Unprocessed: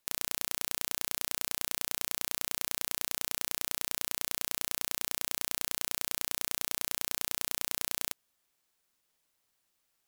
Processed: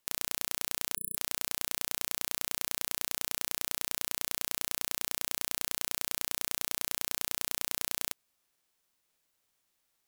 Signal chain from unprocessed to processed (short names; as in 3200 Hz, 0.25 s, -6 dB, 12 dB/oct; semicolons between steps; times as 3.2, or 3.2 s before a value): spectral gain 0.96–1.16, 420–10000 Hz -27 dB; formant shift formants -5 st